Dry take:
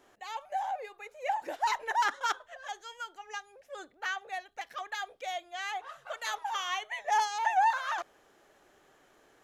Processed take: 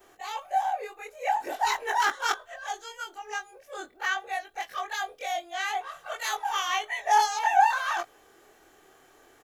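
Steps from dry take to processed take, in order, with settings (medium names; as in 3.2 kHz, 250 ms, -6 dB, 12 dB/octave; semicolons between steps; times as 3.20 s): short-time spectra conjugated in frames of 52 ms; treble shelf 11 kHz +10.5 dB; comb 2.6 ms, depth 34%; trim +7.5 dB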